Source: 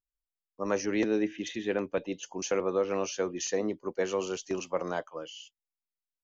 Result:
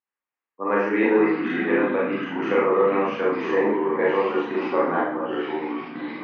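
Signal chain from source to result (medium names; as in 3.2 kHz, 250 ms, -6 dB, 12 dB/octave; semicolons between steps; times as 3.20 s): Schroeder reverb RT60 0.56 s, combs from 27 ms, DRR -5.5 dB; ever faster or slower copies 275 ms, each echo -4 st, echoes 3, each echo -6 dB; cabinet simulation 380–2100 Hz, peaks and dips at 410 Hz -4 dB, 620 Hz -10 dB, 1.4 kHz -4 dB; trim +8.5 dB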